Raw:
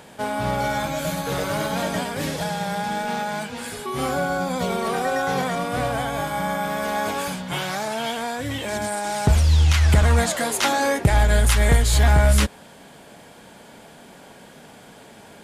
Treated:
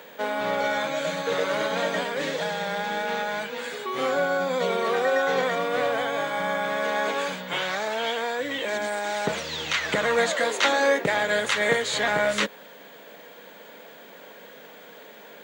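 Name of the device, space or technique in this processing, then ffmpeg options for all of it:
old television with a line whistle: -af "highpass=f=220:w=0.5412,highpass=f=220:w=1.3066,equalizer=f=240:t=q:w=4:g=-7,equalizer=f=350:t=q:w=4:g=-5,equalizer=f=490:t=q:w=4:g=6,equalizer=f=780:t=q:w=4:g=-5,equalizer=f=1.9k:t=q:w=4:g=4,equalizer=f=5.2k:t=q:w=4:g=-8,lowpass=f=6.6k:w=0.5412,lowpass=f=6.6k:w=1.3066,aeval=exprs='val(0)+0.00251*sin(2*PI*15625*n/s)':c=same,equalizer=f=3.7k:w=6.8:g=2.5"

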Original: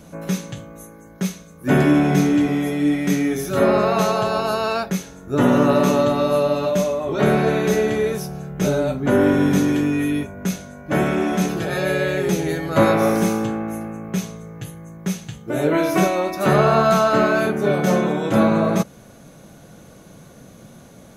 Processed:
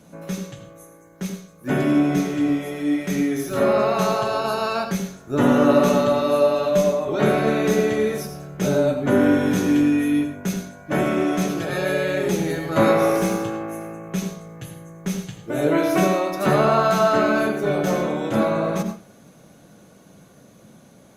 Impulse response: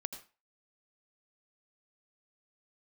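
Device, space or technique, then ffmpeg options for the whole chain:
far-field microphone of a smart speaker: -filter_complex "[1:a]atrim=start_sample=2205[a];[0:a][a]afir=irnorm=-1:irlink=0,highpass=100,dynaudnorm=f=560:g=13:m=11.5dB,volume=-4dB" -ar 48000 -c:a libopus -b:a 48k

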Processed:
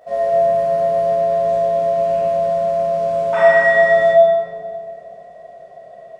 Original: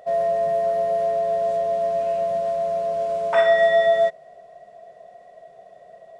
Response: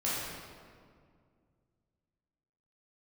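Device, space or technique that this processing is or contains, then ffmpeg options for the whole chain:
stairwell: -filter_complex "[1:a]atrim=start_sample=2205[a];[0:a][a]afir=irnorm=-1:irlink=0,volume=-2dB"

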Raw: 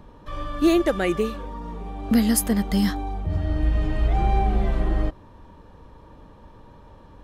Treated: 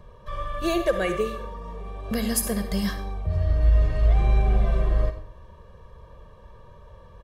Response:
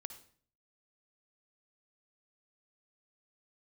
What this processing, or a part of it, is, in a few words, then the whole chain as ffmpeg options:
microphone above a desk: -filter_complex "[0:a]aecho=1:1:1.8:0.89[a];[1:a]atrim=start_sample=2205[b];[a][b]afir=irnorm=-1:irlink=0"

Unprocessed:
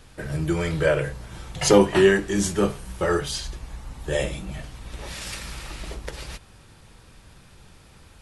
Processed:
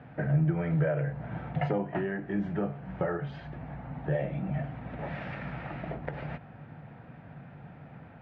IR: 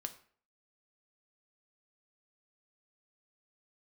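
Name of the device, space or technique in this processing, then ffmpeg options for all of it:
bass amplifier: -af "acompressor=threshold=-32dB:ratio=5,highpass=f=77:w=0.5412,highpass=f=77:w=1.3066,equalizer=f=78:t=q:w=4:g=-9,equalizer=f=150:t=q:w=4:g=10,equalizer=f=250:t=q:w=4:g=6,equalizer=f=380:t=q:w=4:g=-5,equalizer=f=700:t=q:w=4:g=9,equalizer=f=1.1k:t=q:w=4:g=-6,lowpass=f=2k:w=0.5412,lowpass=f=2k:w=1.3066,volume=2.5dB"

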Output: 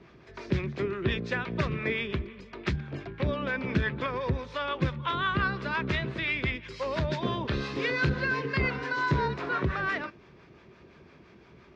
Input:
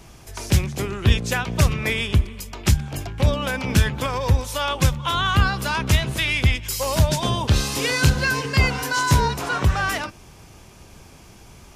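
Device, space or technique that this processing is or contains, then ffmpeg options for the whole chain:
guitar amplifier with harmonic tremolo: -filter_complex "[0:a]acrossover=split=590[a][b];[a]aeval=exprs='val(0)*(1-0.5/2+0.5/2*cos(2*PI*5.8*n/s))':c=same[c];[b]aeval=exprs='val(0)*(1-0.5/2-0.5/2*cos(2*PI*5.8*n/s))':c=same[d];[c][d]amix=inputs=2:normalize=0,asoftclip=type=tanh:threshold=-9.5dB,highpass=98,equalizer=f=100:t=q:w=4:g=-8,equalizer=f=380:t=q:w=4:g=6,equalizer=f=800:t=q:w=4:g=-8,equalizer=f=1.8k:t=q:w=4:g=3,equalizer=f=3k:t=q:w=4:g=-7,lowpass=f=3.6k:w=0.5412,lowpass=f=3.6k:w=1.3066,volume=-3dB"

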